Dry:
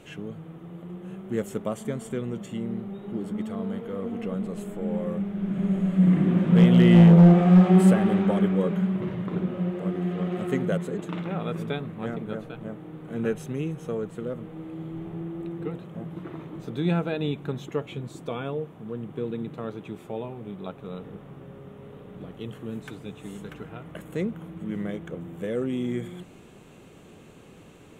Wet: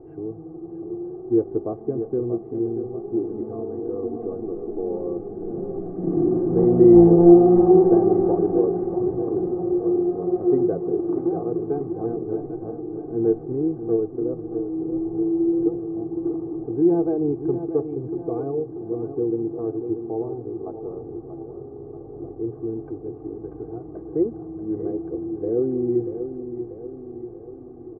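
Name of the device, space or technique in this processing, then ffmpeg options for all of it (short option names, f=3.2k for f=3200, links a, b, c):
under water: -af "lowpass=f=790:w=0.5412,lowpass=f=790:w=1.3066,equalizer=f=340:t=o:w=0.2:g=10,aecho=1:1:2.6:0.95,aecho=1:1:636|1272|1908|2544|3180|3816:0.335|0.184|0.101|0.0557|0.0307|0.0169,volume=1dB"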